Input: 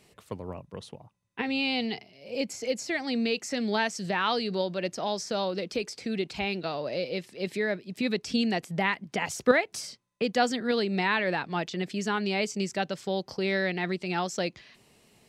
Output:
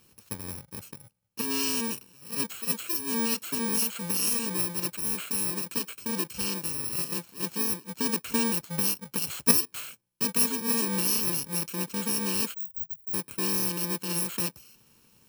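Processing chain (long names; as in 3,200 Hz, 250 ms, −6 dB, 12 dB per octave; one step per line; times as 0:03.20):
samples in bit-reversed order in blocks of 64 samples
0:12.54–0:13.14: inverse Chebyshev band-stop filter 400–8,500 Hz, stop band 70 dB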